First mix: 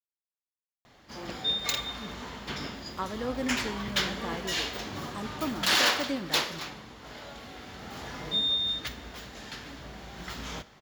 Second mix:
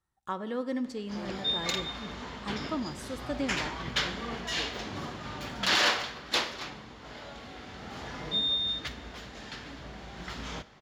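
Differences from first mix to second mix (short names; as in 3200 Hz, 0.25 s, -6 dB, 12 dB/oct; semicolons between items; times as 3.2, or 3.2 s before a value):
speech: entry -2.70 s; master: add air absorption 51 m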